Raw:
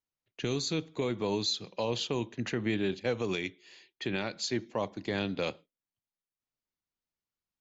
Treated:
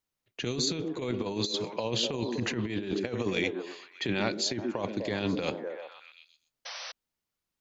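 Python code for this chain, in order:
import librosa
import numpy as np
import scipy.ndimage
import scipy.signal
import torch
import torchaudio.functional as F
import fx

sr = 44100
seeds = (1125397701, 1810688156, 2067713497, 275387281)

y = fx.echo_stepped(x, sr, ms=124, hz=280.0, octaves=0.7, feedback_pct=70, wet_db=-6.0)
y = fx.over_compress(y, sr, threshold_db=-33.0, ratio=-0.5)
y = fx.spec_paint(y, sr, seeds[0], shape='noise', start_s=6.65, length_s=0.27, low_hz=480.0, high_hz=6100.0, level_db=-44.0)
y = F.gain(torch.from_numpy(y), 3.5).numpy()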